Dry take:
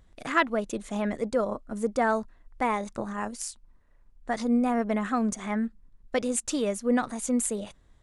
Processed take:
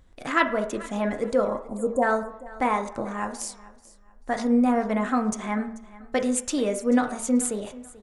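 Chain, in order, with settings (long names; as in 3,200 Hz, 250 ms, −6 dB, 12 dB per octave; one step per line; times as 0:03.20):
healed spectral selection 0:01.64–0:02.00, 1,100–6,600 Hz before
repeating echo 437 ms, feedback 27%, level −19.5 dB
on a send at −5 dB: convolution reverb RT60 0.60 s, pre-delay 3 ms
on the sum: level +1.5 dB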